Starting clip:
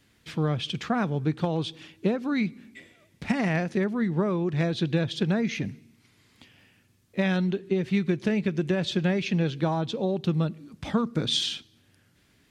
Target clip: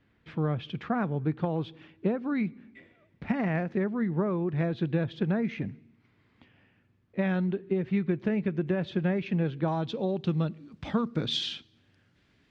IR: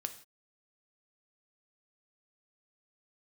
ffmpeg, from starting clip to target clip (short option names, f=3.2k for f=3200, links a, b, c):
-af "asetnsamples=n=441:p=0,asendcmd='9.68 lowpass f 4100',lowpass=2k,volume=-2.5dB"